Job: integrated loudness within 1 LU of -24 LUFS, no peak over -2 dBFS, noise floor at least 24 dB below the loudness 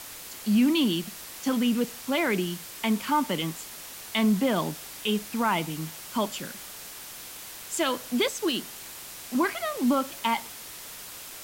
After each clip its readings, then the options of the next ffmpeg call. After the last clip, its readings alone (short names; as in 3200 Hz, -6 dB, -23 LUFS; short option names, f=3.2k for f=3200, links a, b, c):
noise floor -42 dBFS; noise floor target -52 dBFS; loudness -27.5 LUFS; peak -14.0 dBFS; loudness target -24.0 LUFS
-> -af "afftdn=nr=10:nf=-42"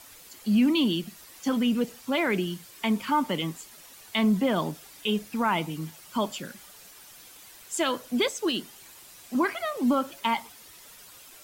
noise floor -50 dBFS; noise floor target -52 dBFS
-> -af "afftdn=nr=6:nf=-50"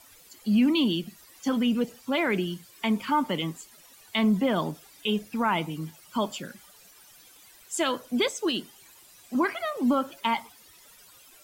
noise floor -54 dBFS; loudness -27.5 LUFS; peak -14.0 dBFS; loudness target -24.0 LUFS
-> -af "volume=3.5dB"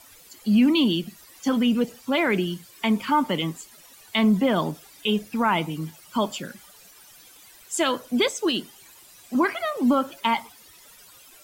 loudness -24.0 LUFS; peak -10.5 dBFS; noise floor -51 dBFS